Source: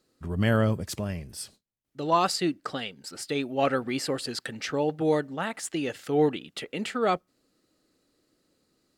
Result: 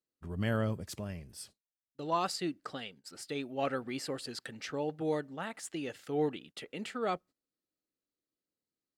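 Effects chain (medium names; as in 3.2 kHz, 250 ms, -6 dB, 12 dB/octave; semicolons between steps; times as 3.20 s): gate -45 dBFS, range -17 dB; trim -8.5 dB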